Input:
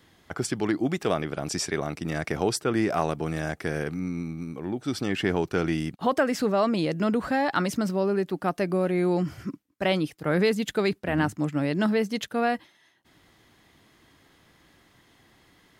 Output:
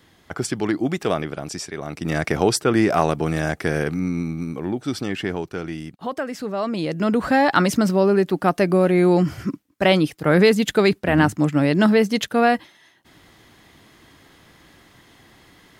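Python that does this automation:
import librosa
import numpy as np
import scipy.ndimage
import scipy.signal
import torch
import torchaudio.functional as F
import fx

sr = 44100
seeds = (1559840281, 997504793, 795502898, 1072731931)

y = fx.gain(x, sr, db=fx.line((1.21, 3.5), (1.73, -4.0), (2.12, 7.0), (4.57, 7.0), (5.61, -4.0), (6.43, -4.0), (7.36, 8.0)))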